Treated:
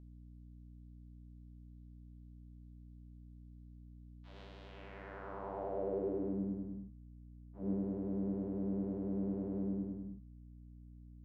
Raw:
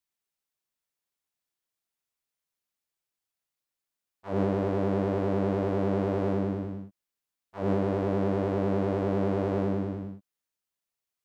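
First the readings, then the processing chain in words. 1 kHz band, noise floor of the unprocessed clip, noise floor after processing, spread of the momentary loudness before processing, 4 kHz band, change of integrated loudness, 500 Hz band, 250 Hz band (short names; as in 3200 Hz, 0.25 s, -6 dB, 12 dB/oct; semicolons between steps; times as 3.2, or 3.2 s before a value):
-15.0 dB, under -85 dBFS, -55 dBFS, 8 LU, under -10 dB, -11.0 dB, -13.5 dB, -9.5 dB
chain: band-pass sweep 3600 Hz -> 230 Hz, 4.63–6.4; hum 60 Hz, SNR 12 dB; de-hum 106.9 Hz, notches 39; gain -4.5 dB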